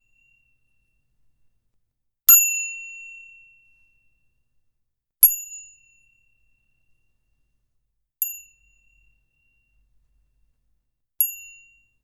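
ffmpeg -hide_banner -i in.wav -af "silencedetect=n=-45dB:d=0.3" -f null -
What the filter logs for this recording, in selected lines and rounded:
silence_start: 0.00
silence_end: 2.29 | silence_duration: 2.29
silence_start: 3.41
silence_end: 5.23 | silence_duration: 1.82
silence_start: 5.71
silence_end: 8.22 | silence_duration: 2.51
silence_start: 8.46
silence_end: 11.20 | silence_duration: 2.75
silence_start: 11.61
silence_end: 12.03 | silence_duration: 0.42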